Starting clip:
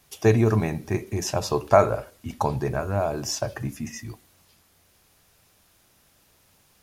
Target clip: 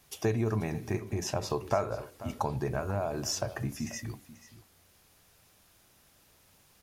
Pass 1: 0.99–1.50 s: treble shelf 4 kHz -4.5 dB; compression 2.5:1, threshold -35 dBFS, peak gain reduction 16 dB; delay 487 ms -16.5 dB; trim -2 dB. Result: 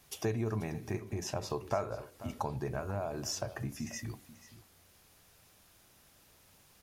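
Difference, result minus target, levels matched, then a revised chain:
compression: peak gain reduction +4.5 dB
0.99–1.50 s: treble shelf 4 kHz -4.5 dB; compression 2.5:1, threshold -27.5 dBFS, peak gain reduction 11.5 dB; delay 487 ms -16.5 dB; trim -2 dB

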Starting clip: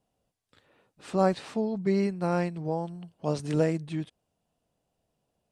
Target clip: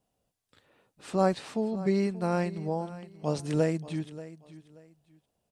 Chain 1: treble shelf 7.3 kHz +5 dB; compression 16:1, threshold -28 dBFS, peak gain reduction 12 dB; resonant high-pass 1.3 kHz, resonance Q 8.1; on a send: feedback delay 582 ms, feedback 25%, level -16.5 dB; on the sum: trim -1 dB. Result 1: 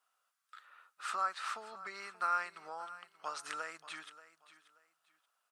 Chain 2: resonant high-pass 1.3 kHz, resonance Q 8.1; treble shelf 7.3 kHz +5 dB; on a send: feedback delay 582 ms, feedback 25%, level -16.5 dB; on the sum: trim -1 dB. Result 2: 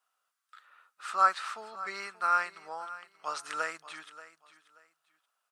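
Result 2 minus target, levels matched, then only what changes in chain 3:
1 kHz band +7.5 dB
remove: resonant high-pass 1.3 kHz, resonance Q 8.1

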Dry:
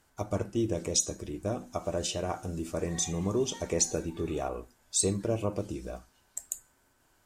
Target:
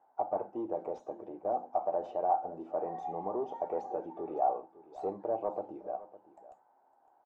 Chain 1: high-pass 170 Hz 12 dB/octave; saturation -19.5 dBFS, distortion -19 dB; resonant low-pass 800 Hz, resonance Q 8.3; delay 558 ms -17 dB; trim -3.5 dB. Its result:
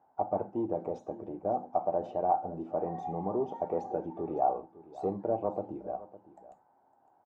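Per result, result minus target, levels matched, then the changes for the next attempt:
125 Hz band +10.0 dB; saturation: distortion -8 dB
change: high-pass 390 Hz 12 dB/octave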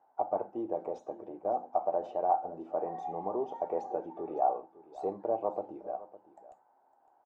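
saturation: distortion -7 dB
change: saturation -26 dBFS, distortion -11 dB

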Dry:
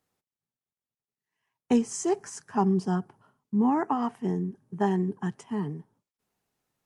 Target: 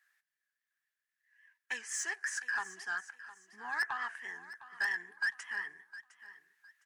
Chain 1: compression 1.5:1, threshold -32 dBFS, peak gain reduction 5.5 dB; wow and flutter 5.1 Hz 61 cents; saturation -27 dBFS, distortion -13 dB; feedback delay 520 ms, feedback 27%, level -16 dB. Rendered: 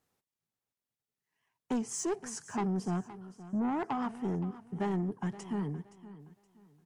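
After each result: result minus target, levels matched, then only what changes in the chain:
2 kHz band -18.0 dB; echo 189 ms early
add after compression: resonant high-pass 1.7 kHz, resonance Q 16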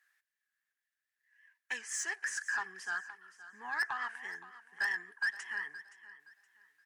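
echo 189 ms early
change: feedback delay 709 ms, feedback 27%, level -16 dB

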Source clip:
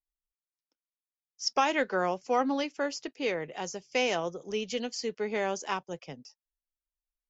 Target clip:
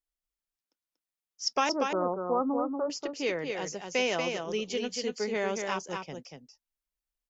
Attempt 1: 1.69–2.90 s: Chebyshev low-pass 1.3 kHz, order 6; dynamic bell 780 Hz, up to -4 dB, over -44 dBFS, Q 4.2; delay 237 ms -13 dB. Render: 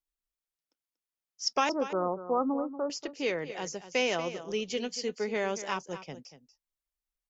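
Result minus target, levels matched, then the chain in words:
echo-to-direct -8 dB
1.69–2.90 s: Chebyshev low-pass 1.3 kHz, order 6; dynamic bell 780 Hz, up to -4 dB, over -44 dBFS, Q 4.2; delay 237 ms -5 dB

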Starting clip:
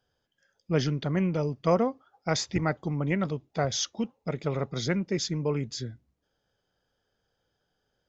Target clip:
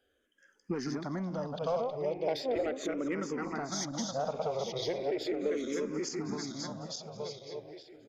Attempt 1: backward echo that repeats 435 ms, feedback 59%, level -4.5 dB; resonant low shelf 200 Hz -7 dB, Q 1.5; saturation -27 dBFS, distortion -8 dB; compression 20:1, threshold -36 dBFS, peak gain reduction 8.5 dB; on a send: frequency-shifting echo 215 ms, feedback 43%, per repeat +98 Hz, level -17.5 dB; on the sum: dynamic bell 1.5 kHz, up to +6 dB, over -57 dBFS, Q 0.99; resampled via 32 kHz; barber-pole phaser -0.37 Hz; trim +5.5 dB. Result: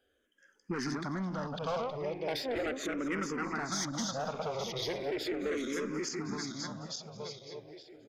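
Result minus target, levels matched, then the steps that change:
2 kHz band +6.0 dB; saturation: distortion +6 dB
change: saturation -20 dBFS, distortion -14 dB; change: dynamic bell 620 Hz, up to +6 dB, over -57 dBFS, Q 0.99

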